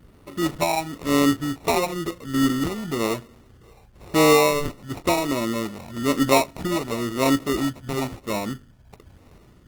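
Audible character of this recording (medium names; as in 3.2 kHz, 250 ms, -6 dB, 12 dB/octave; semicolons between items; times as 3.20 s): a quantiser's noise floor 12-bit, dither none; phasing stages 4, 0.99 Hz, lowest notch 410–2400 Hz; aliases and images of a low sample rate 1.6 kHz, jitter 0%; Opus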